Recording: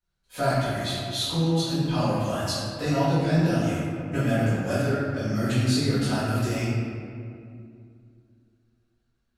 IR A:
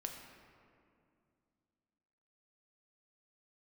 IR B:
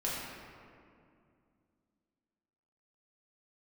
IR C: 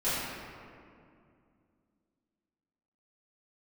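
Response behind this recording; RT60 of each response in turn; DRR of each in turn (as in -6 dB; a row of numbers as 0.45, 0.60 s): C; 2.4, 2.4, 2.4 s; 2.0, -7.0, -15.0 dB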